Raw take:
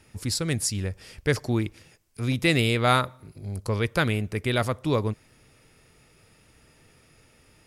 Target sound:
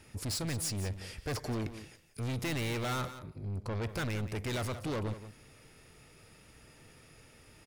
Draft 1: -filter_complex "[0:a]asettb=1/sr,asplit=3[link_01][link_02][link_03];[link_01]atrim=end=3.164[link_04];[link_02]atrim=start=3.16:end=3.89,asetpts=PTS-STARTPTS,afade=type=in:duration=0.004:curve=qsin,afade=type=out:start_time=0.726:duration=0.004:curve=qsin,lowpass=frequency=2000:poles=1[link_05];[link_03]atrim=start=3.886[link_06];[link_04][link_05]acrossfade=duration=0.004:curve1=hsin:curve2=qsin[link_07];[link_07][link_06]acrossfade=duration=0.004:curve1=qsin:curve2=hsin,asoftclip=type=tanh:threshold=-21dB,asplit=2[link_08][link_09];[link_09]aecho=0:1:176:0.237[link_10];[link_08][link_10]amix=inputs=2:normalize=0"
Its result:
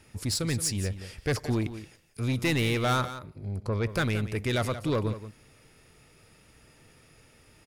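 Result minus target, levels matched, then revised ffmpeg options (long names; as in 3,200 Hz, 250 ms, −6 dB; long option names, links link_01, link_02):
soft clipping: distortion −7 dB
-filter_complex "[0:a]asettb=1/sr,asplit=3[link_01][link_02][link_03];[link_01]atrim=end=3.164[link_04];[link_02]atrim=start=3.16:end=3.89,asetpts=PTS-STARTPTS,afade=type=in:duration=0.004:curve=qsin,afade=type=out:start_time=0.726:duration=0.004:curve=qsin,lowpass=frequency=2000:poles=1[link_05];[link_03]atrim=start=3.886[link_06];[link_04][link_05]acrossfade=duration=0.004:curve1=hsin:curve2=qsin[link_07];[link_07][link_06]acrossfade=duration=0.004:curve1=qsin:curve2=hsin,asoftclip=type=tanh:threshold=-32.5dB,asplit=2[link_08][link_09];[link_09]aecho=0:1:176:0.237[link_10];[link_08][link_10]amix=inputs=2:normalize=0"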